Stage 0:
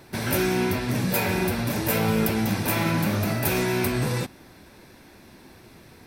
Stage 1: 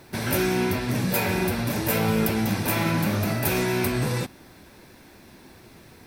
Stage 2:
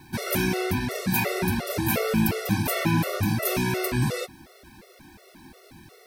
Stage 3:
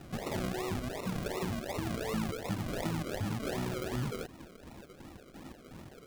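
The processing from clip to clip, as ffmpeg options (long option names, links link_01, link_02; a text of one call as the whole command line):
ffmpeg -i in.wav -af "acrusher=bits=9:mix=0:aa=0.000001" out.wav
ffmpeg -i in.wav -af "afftfilt=real='re*gt(sin(2*PI*2.8*pts/sr)*(1-2*mod(floor(b*sr/1024/370),2)),0)':imag='im*gt(sin(2*PI*2.8*pts/sr)*(1-2*mod(floor(b*sr/1024/370),2)),0)':win_size=1024:overlap=0.75,volume=2.5dB" out.wav
ffmpeg -i in.wav -af "aresample=22050,aresample=44100,acompressor=threshold=-37dB:ratio=2.5,acrusher=samples=39:mix=1:aa=0.000001:lfo=1:lforange=23.4:lforate=2.7" out.wav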